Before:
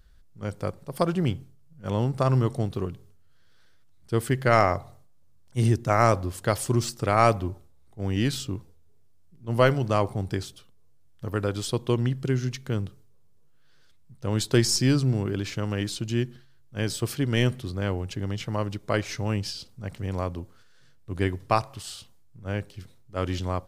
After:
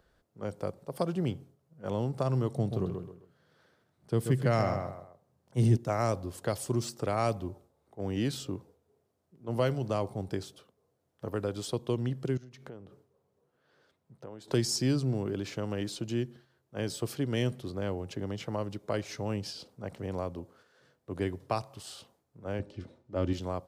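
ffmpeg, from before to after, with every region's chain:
-filter_complex "[0:a]asettb=1/sr,asplit=3[a][b][c];[a]atrim=end=2.544[d];[b]atrim=start=2.54:end=5.77,asetpts=PTS-STARTPTS,afade=t=in:d=0.004:c=qsin,afade=t=out:st=3.226:d=0.004:c=qsin,equalizer=f=150:t=o:w=1:g=8,asplit=2[e][f];[f]adelay=131,lowpass=f=4.7k:p=1,volume=-7.5dB,asplit=2[g][h];[h]adelay=131,lowpass=f=4.7k:p=1,volume=0.23,asplit=2[i][j];[j]adelay=131,lowpass=f=4.7k:p=1,volume=0.23[k];[e][g][i][k]amix=inputs=4:normalize=0,atrim=end_sample=142443[l];[c]atrim=start=5.766[m];[d][l]acrossfade=d=0.004:c1=hsin:c2=qsin[n];[n][m]acrossfade=d=0.004:c1=qsin:c2=hsin,asettb=1/sr,asplit=3[o][p][q];[o]atrim=end=12.374[r];[p]atrim=start=12.37:end=14.48,asetpts=PTS-STARTPTS,afade=t=in:d=0.004:c=qsin,afade=t=out:st=2.106:d=0.004:c=qsin,highshelf=f=4.6k:g=-5,acompressor=threshold=-40dB:ratio=12:attack=3.2:release=140:knee=1:detection=peak[s];[q]atrim=start=14.476[t];[r][s]acrossfade=d=0.004:c1=hsin:c2=qsin[u];[u][t]acrossfade=d=0.004:c1=qsin:c2=hsin,asettb=1/sr,asplit=3[v][w][x];[v]atrim=end=22.594[y];[w]atrim=start=22.59:end=23.33,asetpts=PTS-STARTPTS,afade=t=in:d=0.004:c=qsin,afade=t=out:st=0.736:d=0.004:c=qsin,lowpass=5.9k,lowshelf=f=380:g=8.5,aecho=1:1:3.4:0.39,atrim=end_sample=32634[z];[x]atrim=start=23.326[aa];[y][z]acrossfade=d=0.004:c1=hsin:c2=qsin[ab];[ab][aa]acrossfade=d=0.004:c1=qsin:c2=hsin,highpass=f=120:p=1,equalizer=f=560:w=0.44:g=14.5,acrossover=split=200|3000[ac][ad][ae];[ad]acompressor=threshold=-33dB:ratio=2[af];[ac][af][ae]amix=inputs=3:normalize=0,volume=-7.5dB"

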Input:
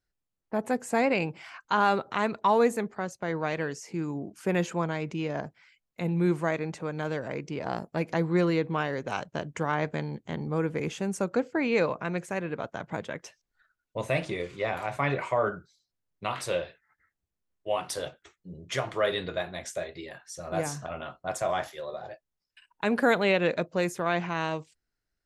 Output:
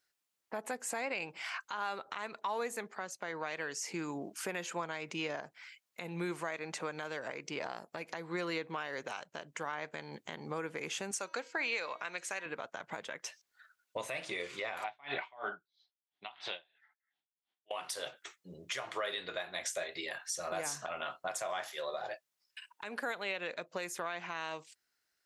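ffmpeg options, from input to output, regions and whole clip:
-filter_complex "[0:a]asettb=1/sr,asplit=3[a][b][c];[a]atrim=end=11.114[d];[b]atrim=start=11.11:end=12.46,asetpts=PTS-STARTPTS,afade=t=in:d=0.004:c=qsin,afade=t=out:st=1.346:d=0.004:c=qsin,lowpass=5.2k,aemphasis=mode=production:type=riaa,bandreject=f=319.5:t=h:w=4,bandreject=f=639:t=h:w=4,bandreject=f=958.5:t=h:w=4,bandreject=f=1.278k:t=h:w=4,bandreject=f=1.5975k:t=h:w=4,bandreject=f=1.917k:t=h:w=4,bandreject=f=2.2365k:t=h:w=4,bandreject=f=2.556k:t=h:w=4,bandreject=f=2.8755k:t=h:w=4,bandreject=f=3.195k:t=h:w=4,bandreject=f=3.5145k:t=h:w=4,bandreject=f=3.834k:t=h:w=4,bandreject=f=4.1535k:t=h:w=4,bandreject=f=4.473k:t=h:w=4,bandreject=f=4.7925k:t=h:w=4,bandreject=f=5.112k:t=h:w=4,bandreject=f=5.4315k:t=h:w=4,bandreject=f=5.751k:t=h:w=4,bandreject=f=6.0705k:t=h:w=4,bandreject=f=6.39k:t=h:w=4[e];[c]atrim=start=12.456[f];[d][e]acrossfade=d=0.004:c1=hsin:c2=qsin[g];[g][f]acrossfade=d=0.004:c1=qsin:c2=hsin,asettb=1/sr,asplit=3[h][i][j];[h]atrim=end=14.844[k];[i]atrim=start=14.84:end=17.71,asetpts=PTS-STARTPTS,afade=t=in:d=0.004:c=qsin,afade=t=out:st=2.866:d=0.004:c=qsin,highpass=150,equalizer=f=520:t=q:w=4:g=-9,equalizer=f=770:t=q:w=4:g=8,equalizer=f=1.2k:t=q:w=4:g=-4,equalizer=f=3.4k:t=q:w=4:g=9,lowpass=f=4.2k:w=0.5412,lowpass=f=4.2k:w=1.3066,aeval=exprs='val(0)*pow(10,-32*(0.5-0.5*cos(2*PI*3*n/s))/20)':c=same[l];[j]atrim=start=17.706[m];[k][l]acrossfade=d=0.004:c1=hsin:c2=qsin[n];[n][m]acrossfade=d=0.004:c1=qsin:c2=hsin,highpass=f=1.3k:p=1,acompressor=threshold=-44dB:ratio=2.5,alimiter=level_in=10dB:limit=-24dB:level=0:latency=1:release=241,volume=-10dB,volume=8.5dB"

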